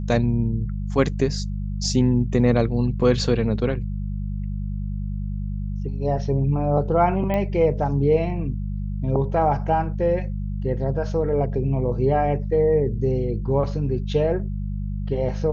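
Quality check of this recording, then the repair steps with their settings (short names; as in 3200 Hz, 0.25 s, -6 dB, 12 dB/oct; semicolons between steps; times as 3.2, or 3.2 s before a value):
hum 50 Hz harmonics 4 -27 dBFS
7.34 pop -14 dBFS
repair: de-click; de-hum 50 Hz, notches 4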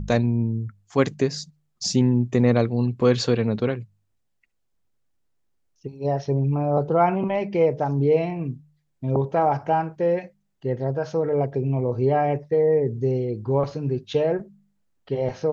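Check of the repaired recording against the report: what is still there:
none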